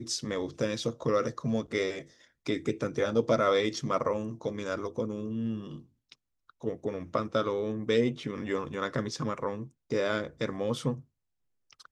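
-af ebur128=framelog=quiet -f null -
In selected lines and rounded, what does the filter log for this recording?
Integrated loudness:
  I:         -31.4 LUFS
  Threshold: -41.9 LUFS
Loudness range:
  LRA:         4.9 LU
  Threshold: -51.7 LUFS
  LRA low:   -34.7 LUFS
  LRA high:  -29.8 LUFS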